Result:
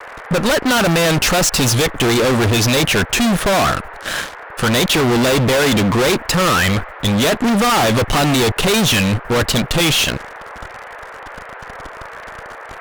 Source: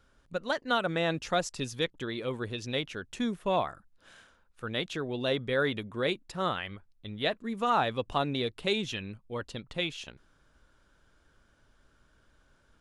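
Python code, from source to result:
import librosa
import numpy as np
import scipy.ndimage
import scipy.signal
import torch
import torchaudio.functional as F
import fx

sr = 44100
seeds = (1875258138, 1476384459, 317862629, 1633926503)

y = fx.fuzz(x, sr, gain_db=51.0, gate_db=-59.0)
y = fx.dmg_noise_band(y, sr, seeds[0], low_hz=430.0, high_hz=1900.0, level_db=-34.0)
y = fx.vibrato(y, sr, rate_hz=1.5, depth_cents=46.0)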